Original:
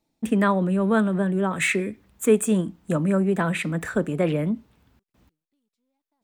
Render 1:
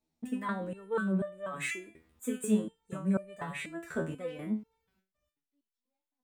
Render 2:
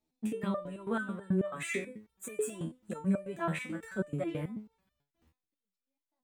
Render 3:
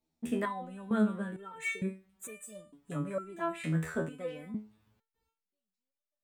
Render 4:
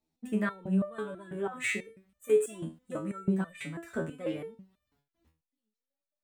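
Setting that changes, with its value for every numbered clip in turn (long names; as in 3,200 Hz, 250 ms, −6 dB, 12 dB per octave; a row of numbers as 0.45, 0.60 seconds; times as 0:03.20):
step-sequenced resonator, speed: 4.1, 9.2, 2.2, 6.1 Hertz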